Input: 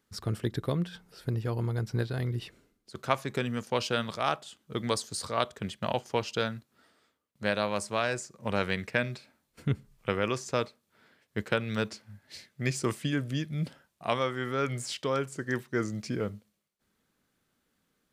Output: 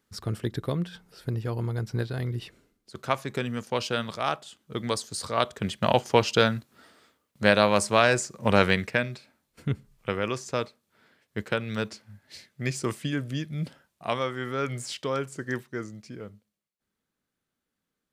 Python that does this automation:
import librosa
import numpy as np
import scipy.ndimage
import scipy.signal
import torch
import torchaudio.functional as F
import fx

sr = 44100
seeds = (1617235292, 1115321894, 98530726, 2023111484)

y = fx.gain(x, sr, db=fx.line((5.09, 1.0), (6.01, 9.0), (8.66, 9.0), (9.09, 0.5), (15.52, 0.5), (16.0, -8.5)))